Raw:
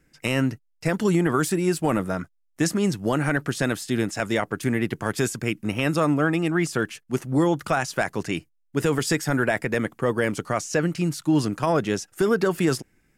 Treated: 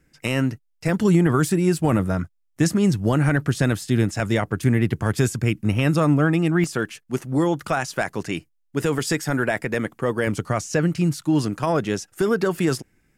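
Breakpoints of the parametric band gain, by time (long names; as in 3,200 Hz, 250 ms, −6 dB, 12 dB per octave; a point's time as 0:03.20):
parametric band 82 Hz 2 octaves
+3 dB
from 0:00.89 +12.5 dB
from 0:06.64 +0.5 dB
from 0:10.27 +9.5 dB
from 0:11.16 +2.5 dB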